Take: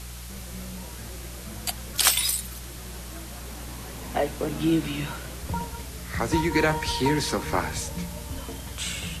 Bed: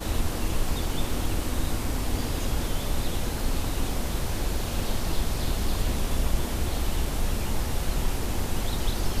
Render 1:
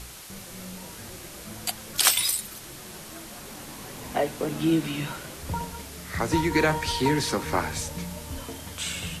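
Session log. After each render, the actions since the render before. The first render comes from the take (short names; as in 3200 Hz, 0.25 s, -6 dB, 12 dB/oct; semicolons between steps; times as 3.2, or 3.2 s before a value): de-hum 60 Hz, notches 3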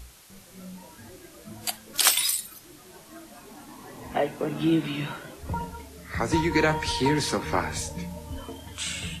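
noise print and reduce 9 dB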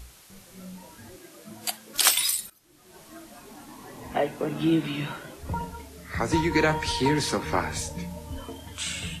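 1.16–1.96 HPF 150 Hz; 2.5–3.02 fade in quadratic, from -15.5 dB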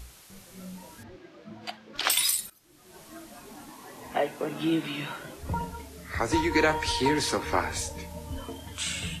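1.03–2.1 air absorption 230 m; 3.7–5.2 low shelf 240 Hz -10 dB; 6.12–8.15 bell 170 Hz -11.5 dB 0.65 oct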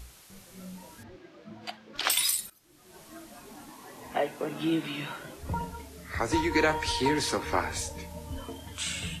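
gain -1.5 dB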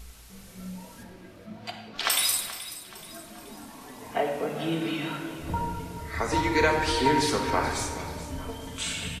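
feedback echo 0.428 s, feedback 44%, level -14.5 dB; shoebox room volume 2000 m³, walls mixed, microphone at 1.6 m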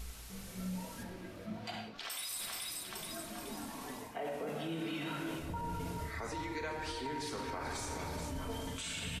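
reverse; compressor 12:1, threshold -33 dBFS, peak gain reduction 16.5 dB; reverse; limiter -31 dBFS, peak gain reduction 8 dB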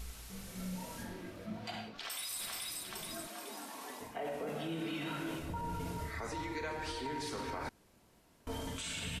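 0.51–1.3 flutter echo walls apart 6.8 m, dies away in 0.38 s; 3.27–4.01 HPF 370 Hz; 7.69–8.47 room tone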